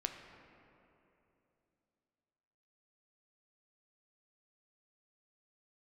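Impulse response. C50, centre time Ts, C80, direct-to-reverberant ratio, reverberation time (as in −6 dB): 6.0 dB, 50 ms, 7.0 dB, 4.0 dB, 3.0 s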